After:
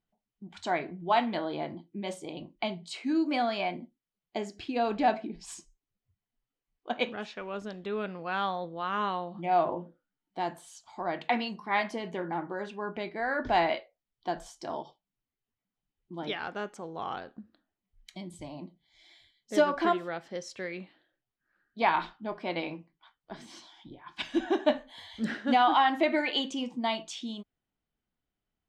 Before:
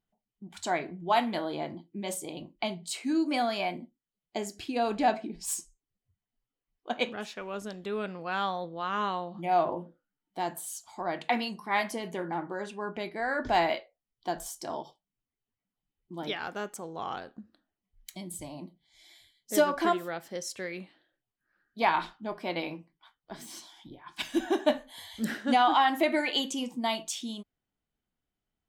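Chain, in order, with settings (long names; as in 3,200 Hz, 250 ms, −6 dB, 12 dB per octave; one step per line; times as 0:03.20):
low-pass filter 4,400 Hz 12 dB per octave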